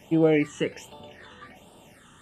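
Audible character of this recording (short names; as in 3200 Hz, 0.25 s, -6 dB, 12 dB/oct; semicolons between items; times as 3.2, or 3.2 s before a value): phasing stages 8, 1.3 Hz, lowest notch 660–2000 Hz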